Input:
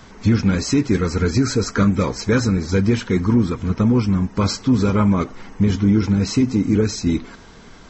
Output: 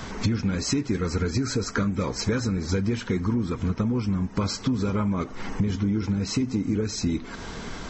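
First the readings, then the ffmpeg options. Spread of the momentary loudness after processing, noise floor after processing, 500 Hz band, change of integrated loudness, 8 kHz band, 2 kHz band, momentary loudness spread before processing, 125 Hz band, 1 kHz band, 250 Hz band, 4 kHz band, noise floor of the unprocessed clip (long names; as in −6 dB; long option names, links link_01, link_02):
3 LU, −38 dBFS, −8.0 dB, −8.0 dB, can't be measured, −6.0 dB, 5 LU, −7.5 dB, −7.0 dB, −8.0 dB, −4.0 dB, −43 dBFS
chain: -af "acompressor=threshold=-31dB:ratio=6,volume=7.5dB"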